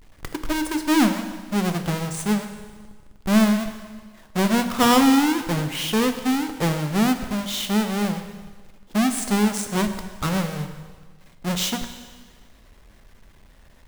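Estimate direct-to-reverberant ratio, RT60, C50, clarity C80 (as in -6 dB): 7.0 dB, 1.5 s, 9.0 dB, 10.0 dB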